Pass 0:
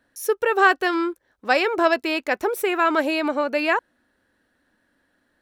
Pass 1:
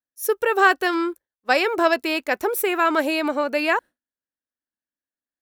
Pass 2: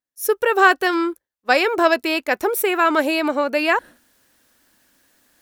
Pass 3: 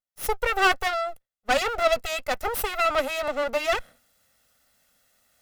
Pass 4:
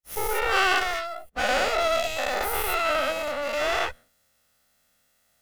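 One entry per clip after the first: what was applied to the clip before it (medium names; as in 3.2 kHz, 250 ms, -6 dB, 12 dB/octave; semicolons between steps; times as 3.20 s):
expander -29 dBFS; treble shelf 9.5 kHz +11.5 dB
reverse; upward compressor, threshold -37 dBFS; reverse; wow and flutter 26 cents; trim +2.5 dB
comb filter that takes the minimum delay 1.5 ms; trim -4 dB
every event in the spectrogram widened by 240 ms; trim -7.5 dB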